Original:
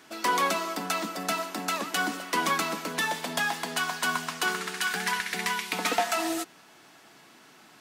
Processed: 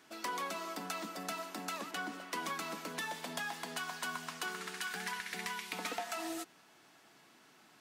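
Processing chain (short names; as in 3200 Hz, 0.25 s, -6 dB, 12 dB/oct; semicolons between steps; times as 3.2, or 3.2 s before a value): 1.91–2.32 high shelf 4700 Hz -8 dB; compressor 3:1, threshold -28 dBFS, peak gain reduction 6.5 dB; gain -8.5 dB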